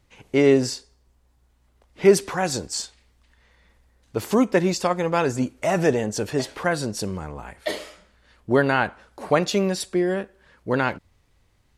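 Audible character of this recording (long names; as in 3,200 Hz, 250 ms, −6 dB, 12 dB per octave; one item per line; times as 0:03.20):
background noise floor −63 dBFS
spectral slope −5.0 dB per octave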